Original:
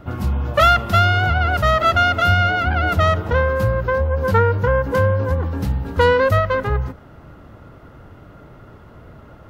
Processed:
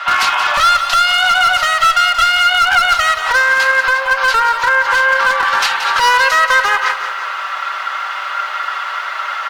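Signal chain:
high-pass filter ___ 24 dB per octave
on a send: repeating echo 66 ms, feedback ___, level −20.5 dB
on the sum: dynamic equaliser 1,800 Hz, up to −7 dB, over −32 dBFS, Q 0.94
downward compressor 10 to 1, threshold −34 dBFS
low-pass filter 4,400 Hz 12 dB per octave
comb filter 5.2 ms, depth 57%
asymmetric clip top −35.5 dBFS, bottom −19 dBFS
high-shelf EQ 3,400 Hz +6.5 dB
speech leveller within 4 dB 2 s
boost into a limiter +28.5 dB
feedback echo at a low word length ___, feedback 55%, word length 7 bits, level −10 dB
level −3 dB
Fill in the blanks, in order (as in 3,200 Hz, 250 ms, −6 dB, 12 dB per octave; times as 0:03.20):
1,100 Hz, 34%, 178 ms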